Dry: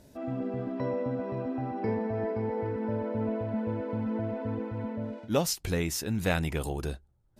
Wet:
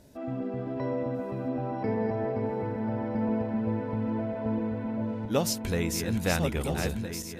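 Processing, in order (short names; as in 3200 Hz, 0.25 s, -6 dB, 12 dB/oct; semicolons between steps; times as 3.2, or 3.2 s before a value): regenerating reverse delay 0.657 s, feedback 61%, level -5.5 dB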